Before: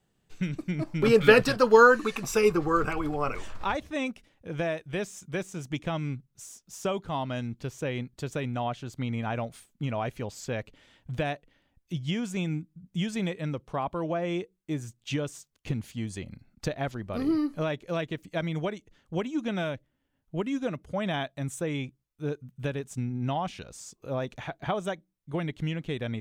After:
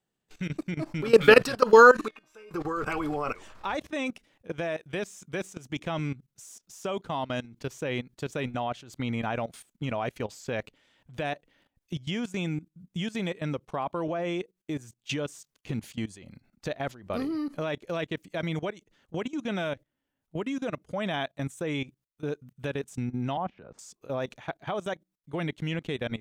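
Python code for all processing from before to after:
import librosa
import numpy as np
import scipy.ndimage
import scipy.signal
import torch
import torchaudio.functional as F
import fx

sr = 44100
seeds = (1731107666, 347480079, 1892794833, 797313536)

y = fx.chain(x, sr, fx.bass_treble(bass_db=-7, treble_db=-14),
    fx.comb_fb(f0_hz=310.0, decay_s=0.48, harmonics='all', damping=0.0, mix_pct=90), at=(2.08, 2.51))
y = fx.chain(y, sr, fx.lowpass(hz=1300.0, slope=12),
    fx.band_squash(depth_pct=70), at=(23.37, 23.79))
y = fx.low_shelf(y, sr, hz=130.0, db=-10.5)
y = fx.level_steps(y, sr, step_db=18)
y = y * 10.0 ** (6.0 / 20.0)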